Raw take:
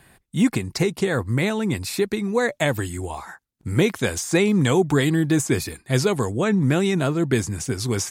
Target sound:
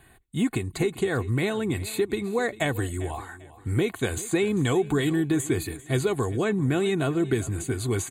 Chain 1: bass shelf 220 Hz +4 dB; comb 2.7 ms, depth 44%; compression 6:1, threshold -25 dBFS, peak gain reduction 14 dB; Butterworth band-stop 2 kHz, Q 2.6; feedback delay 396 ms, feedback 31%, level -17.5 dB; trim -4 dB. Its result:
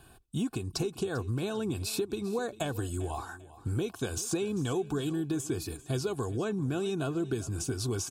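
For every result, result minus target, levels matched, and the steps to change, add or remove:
compression: peak gain reduction +8 dB; 2 kHz band -4.5 dB
change: compression 6:1, threshold -15.5 dBFS, peak gain reduction 6.5 dB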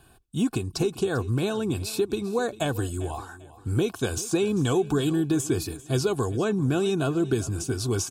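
2 kHz band -4.5 dB
change: Butterworth band-stop 5.4 kHz, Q 2.6

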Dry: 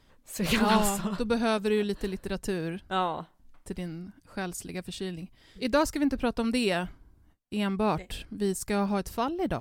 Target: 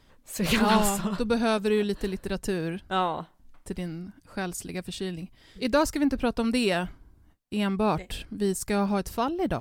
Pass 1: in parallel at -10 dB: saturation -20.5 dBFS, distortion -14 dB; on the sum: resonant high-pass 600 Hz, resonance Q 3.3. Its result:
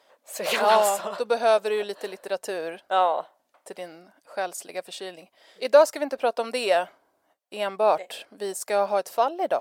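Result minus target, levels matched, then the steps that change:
500 Hz band +3.0 dB
remove: resonant high-pass 600 Hz, resonance Q 3.3

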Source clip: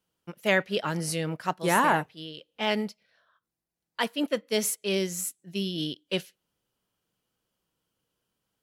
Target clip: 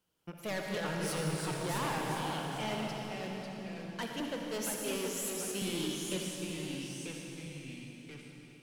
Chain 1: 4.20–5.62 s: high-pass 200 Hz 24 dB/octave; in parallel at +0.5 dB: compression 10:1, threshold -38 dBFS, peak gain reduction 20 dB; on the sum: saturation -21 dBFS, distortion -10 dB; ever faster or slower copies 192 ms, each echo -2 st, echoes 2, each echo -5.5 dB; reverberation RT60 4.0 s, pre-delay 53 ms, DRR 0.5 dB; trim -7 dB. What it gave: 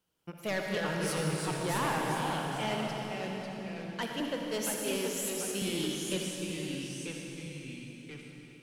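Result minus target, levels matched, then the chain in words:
saturation: distortion -4 dB
4.20–5.62 s: high-pass 200 Hz 24 dB/octave; in parallel at +0.5 dB: compression 10:1, threshold -38 dBFS, peak gain reduction 20 dB; on the sum: saturation -27 dBFS, distortion -7 dB; ever faster or slower copies 192 ms, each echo -2 st, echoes 2, each echo -5.5 dB; reverberation RT60 4.0 s, pre-delay 53 ms, DRR 0.5 dB; trim -7 dB

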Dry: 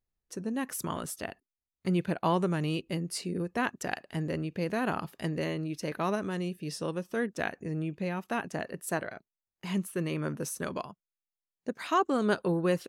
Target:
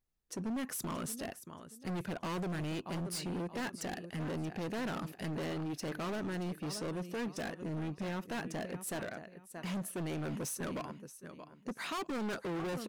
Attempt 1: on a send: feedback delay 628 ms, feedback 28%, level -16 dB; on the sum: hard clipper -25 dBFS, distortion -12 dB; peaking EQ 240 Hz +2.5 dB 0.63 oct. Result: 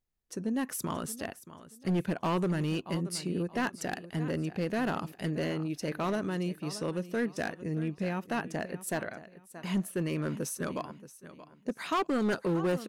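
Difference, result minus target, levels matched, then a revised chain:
hard clipper: distortion -8 dB
on a send: feedback delay 628 ms, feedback 28%, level -16 dB; on the sum: hard clipper -36 dBFS, distortion -4 dB; peaking EQ 240 Hz +2.5 dB 0.63 oct

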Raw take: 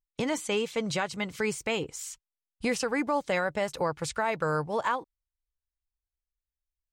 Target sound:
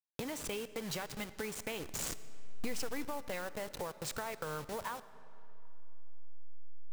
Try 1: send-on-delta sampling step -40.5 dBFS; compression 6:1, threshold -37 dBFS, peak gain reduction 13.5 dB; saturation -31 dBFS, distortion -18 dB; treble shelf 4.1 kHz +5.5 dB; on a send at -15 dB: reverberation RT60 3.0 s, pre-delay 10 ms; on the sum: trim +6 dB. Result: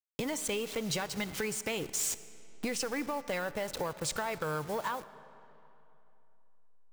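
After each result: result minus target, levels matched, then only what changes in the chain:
compression: peak gain reduction -6.5 dB; send-on-delta sampling: distortion -10 dB
change: compression 6:1, threshold -45 dBFS, peak gain reduction 20.5 dB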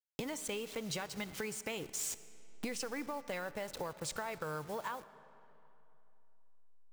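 send-on-delta sampling: distortion -10 dB
change: send-on-delta sampling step -32 dBFS

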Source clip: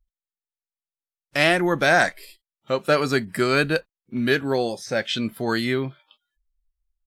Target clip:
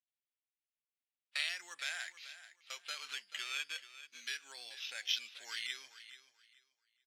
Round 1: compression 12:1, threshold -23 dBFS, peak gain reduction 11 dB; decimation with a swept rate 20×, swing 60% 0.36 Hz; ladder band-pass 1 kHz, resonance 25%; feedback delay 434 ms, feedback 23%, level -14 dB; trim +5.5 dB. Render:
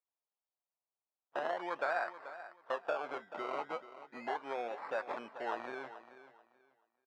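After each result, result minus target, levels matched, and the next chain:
4 kHz band -17.0 dB; decimation with a swept rate: distortion +7 dB
compression 12:1, threshold -23 dBFS, peak gain reduction 11 dB; decimation with a swept rate 20×, swing 60% 0.36 Hz; ladder band-pass 3.6 kHz, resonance 25%; feedback delay 434 ms, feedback 23%, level -14 dB; trim +5.5 dB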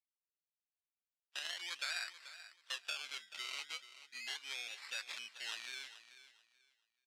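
decimation with a swept rate: distortion +7 dB
compression 12:1, threshold -23 dBFS, peak gain reduction 11 dB; decimation with a swept rate 7×, swing 60% 0.36 Hz; ladder band-pass 3.6 kHz, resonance 25%; feedback delay 434 ms, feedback 23%, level -14 dB; trim +5.5 dB

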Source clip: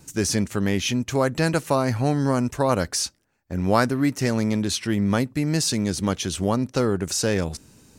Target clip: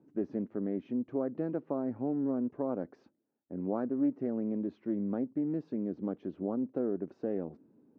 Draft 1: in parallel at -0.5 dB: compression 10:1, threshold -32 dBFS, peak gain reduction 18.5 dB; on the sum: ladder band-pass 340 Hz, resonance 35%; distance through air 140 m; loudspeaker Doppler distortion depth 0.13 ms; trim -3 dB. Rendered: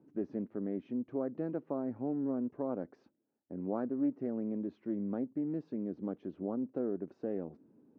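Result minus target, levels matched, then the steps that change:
compression: peak gain reduction +10.5 dB
change: compression 10:1, threshold -20.5 dBFS, peak gain reduction 8.5 dB

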